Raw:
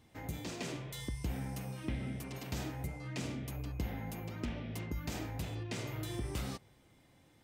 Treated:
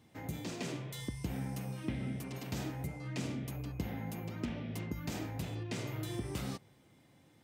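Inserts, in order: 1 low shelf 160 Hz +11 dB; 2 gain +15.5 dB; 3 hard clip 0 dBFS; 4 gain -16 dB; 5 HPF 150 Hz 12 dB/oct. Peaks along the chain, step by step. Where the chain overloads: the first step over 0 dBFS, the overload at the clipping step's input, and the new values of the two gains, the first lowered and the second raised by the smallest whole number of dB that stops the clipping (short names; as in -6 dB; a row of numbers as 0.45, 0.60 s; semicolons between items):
-20.5, -5.0, -5.0, -21.0, -23.5 dBFS; no overload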